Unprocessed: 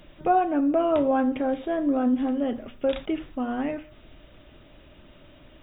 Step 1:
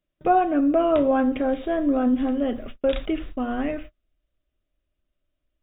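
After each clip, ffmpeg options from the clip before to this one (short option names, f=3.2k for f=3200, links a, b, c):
-af "bandreject=f=880:w=5.4,agate=range=-35dB:threshold=-41dB:ratio=16:detection=peak,asubboost=boost=4:cutoff=70,volume=3dB"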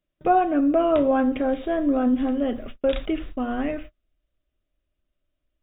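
-af anull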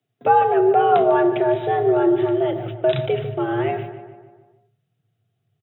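-filter_complex "[0:a]asplit=2[a][b];[b]adelay=149,lowpass=f=2.4k:p=1,volume=-11dB,asplit=2[c][d];[d]adelay=149,lowpass=f=2.4k:p=1,volume=0.55,asplit=2[e][f];[f]adelay=149,lowpass=f=2.4k:p=1,volume=0.55,asplit=2[g][h];[h]adelay=149,lowpass=f=2.4k:p=1,volume=0.55,asplit=2[i][j];[j]adelay=149,lowpass=f=2.4k:p=1,volume=0.55,asplit=2[k][l];[l]adelay=149,lowpass=f=2.4k:p=1,volume=0.55[m];[c][e][g][i][k][m]amix=inputs=6:normalize=0[n];[a][n]amix=inputs=2:normalize=0,afreqshift=99,volume=3.5dB"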